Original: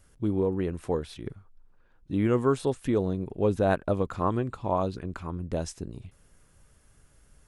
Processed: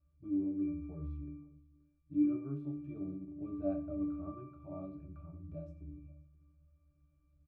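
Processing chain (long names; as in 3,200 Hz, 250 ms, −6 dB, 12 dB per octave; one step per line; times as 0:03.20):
harmonic and percussive parts rebalanced harmonic +5 dB
resonances in every octave D, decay 0.67 s
single-tap delay 528 ms −23.5 dB
rectangular room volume 43 cubic metres, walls mixed, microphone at 0.31 metres
level +1 dB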